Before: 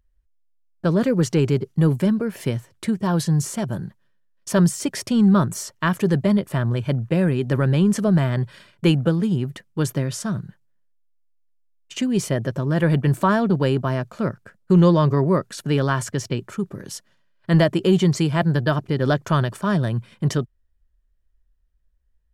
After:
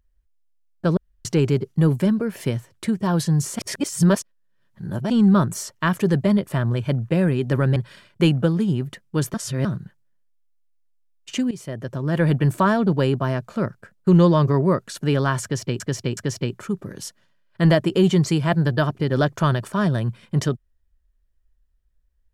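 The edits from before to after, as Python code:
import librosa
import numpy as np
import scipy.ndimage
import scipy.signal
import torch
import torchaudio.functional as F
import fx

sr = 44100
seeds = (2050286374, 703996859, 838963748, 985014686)

y = fx.edit(x, sr, fx.room_tone_fill(start_s=0.97, length_s=0.28),
    fx.reverse_span(start_s=3.59, length_s=1.51),
    fx.cut(start_s=7.76, length_s=0.63),
    fx.reverse_span(start_s=9.97, length_s=0.31),
    fx.fade_in_from(start_s=12.14, length_s=0.76, floor_db=-17.0),
    fx.repeat(start_s=16.06, length_s=0.37, count=3), tone=tone)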